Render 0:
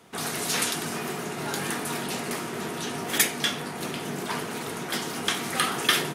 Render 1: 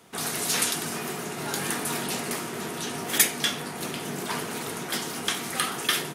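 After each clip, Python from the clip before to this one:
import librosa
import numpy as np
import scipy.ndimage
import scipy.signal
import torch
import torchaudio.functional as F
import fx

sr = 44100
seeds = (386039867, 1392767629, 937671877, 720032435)

y = fx.high_shelf(x, sr, hz=5300.0, db=5.0)
y = fx.rider(y, sr, range_db=3, speed_s=2.0)
y = y * 10.0 ** (-2.5 / 20.0)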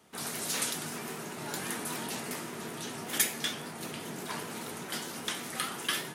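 y = fx.rev_fdn(x, sr, rt60_s=0.93, lf_ratio=1.0, hf_ratio=0.65, size_ms=10.0, drr_db=8.0)
y = fx.vibrato_shape(y, sr, shape='saw_up', rate_hz=5.1, depth_cents=100.0)
y = y * 10.0 ** (-7.5 / 20.0)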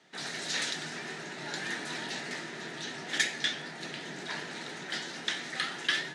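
y = fx.cabinet(x, sr, low_hz=140.0, low_slope=24, high_hz=6800.0, hz=(220.0, 460.0, 1100.0, 1800.0, 3900.0), db=(-7, -4, -8, 9, 6))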